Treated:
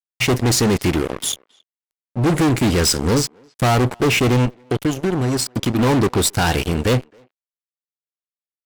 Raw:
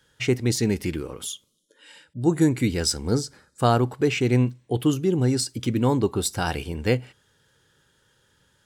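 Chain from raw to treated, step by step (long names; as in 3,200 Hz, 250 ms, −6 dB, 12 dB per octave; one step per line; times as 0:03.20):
0:04.45–0:05.79: downward compressor 8 to 1, threshold −27 dBFS, peak gain reduction 11.5 dB
fuzz pedal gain 29 dB, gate −36 dBFS
far-end echo of a speakerphone 270 ms, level −25 dB
0:01.09–0:02.50: highs frequency-modulated by the lows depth 0.33 ms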